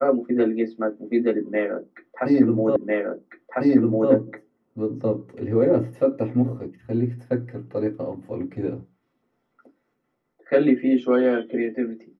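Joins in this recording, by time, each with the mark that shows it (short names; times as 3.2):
2.76 repeat of the last 1.35 s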